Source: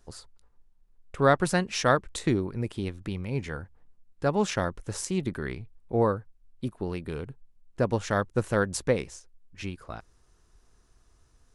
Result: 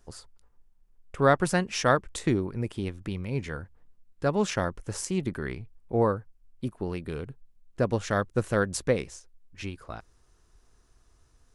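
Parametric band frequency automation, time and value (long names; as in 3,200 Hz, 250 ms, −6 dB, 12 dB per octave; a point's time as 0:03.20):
parametric band −4.5 dB 0.21 octaves
4,000 Hz
from 0:03.11 810 Hz
from 0:04.50 3,800 Hz
from 0:06.97 900 Hz
from 0:09.11 180 Hz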